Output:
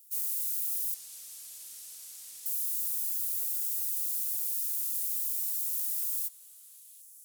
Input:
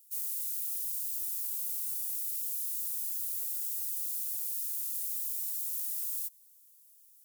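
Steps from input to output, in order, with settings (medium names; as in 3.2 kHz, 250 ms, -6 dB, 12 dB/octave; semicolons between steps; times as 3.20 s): modulation noise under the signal 33 dB; 0.94–2.46 s: distance through air 58 m; repeats whose band climbs or falls 245 ms, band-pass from 450 Hz, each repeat 1.4 oct, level -6.5 dB; trim +3 dB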